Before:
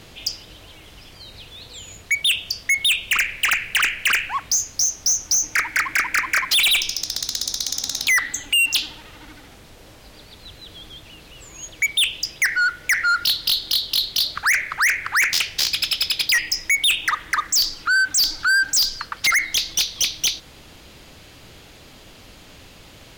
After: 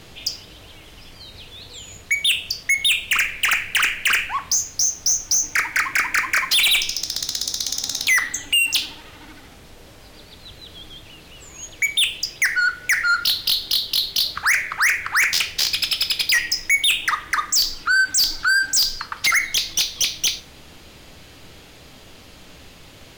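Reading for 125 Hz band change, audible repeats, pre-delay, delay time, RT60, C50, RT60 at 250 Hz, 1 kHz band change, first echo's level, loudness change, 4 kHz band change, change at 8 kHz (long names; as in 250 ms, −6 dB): +0.5 dB, no echo audible, 4 ms, no echo audible, 0.50 s, 16.0 dB, 0.80 s, +0.5 dB, no echo audible, +0.5 dB, +0.5 dB, 0.0 dB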